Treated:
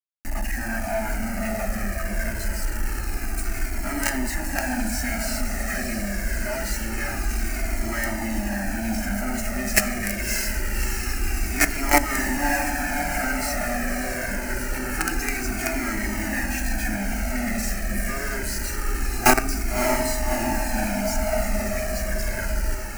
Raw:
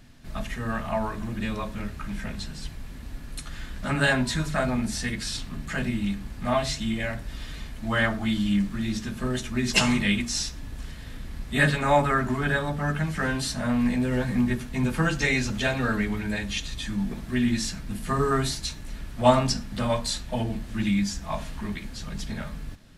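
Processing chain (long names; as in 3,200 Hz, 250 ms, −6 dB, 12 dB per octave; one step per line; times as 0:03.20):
mains-hum notches 60/120/180/240/300/360/420/480/540 Hz
log-companded quantiser 2 bits
phaser with its sweep stopped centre 710 Hz, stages 8
on a send: feedback delay with all-pass diffusion 606 ms, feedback 74%, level −6.5 dB
on the sum: flanger whose copies keep moving one way falling 0.25 Hz
level +5 dB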